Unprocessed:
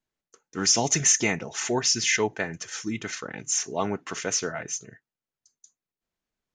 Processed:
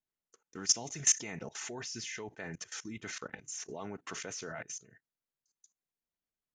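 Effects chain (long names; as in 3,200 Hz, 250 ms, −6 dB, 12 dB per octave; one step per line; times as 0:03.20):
output level in coarse steps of 19 dB
level −3.5 dB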